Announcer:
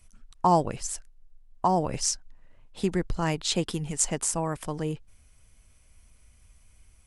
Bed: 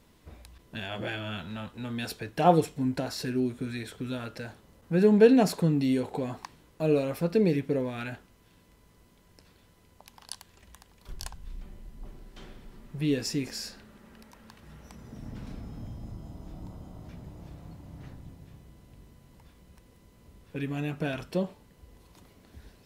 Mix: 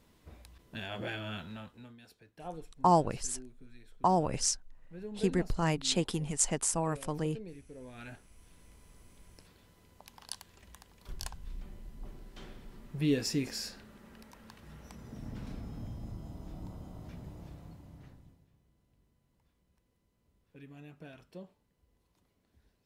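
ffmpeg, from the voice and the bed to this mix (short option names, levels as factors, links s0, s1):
-filter_complex "[0:a]adelay=2400,volume=0.708[s0];[1:a]volume=7.08,afade=t=out:st=1.37:d=0.6:silence=0.11885,afade=t=in:st=7.75:d=1.04:silence=0.0891251,afade=t=out:st=17.32:d=1.16:silence=0.141254[s1];[s0][s1]amix=inputs=2:normalize=0"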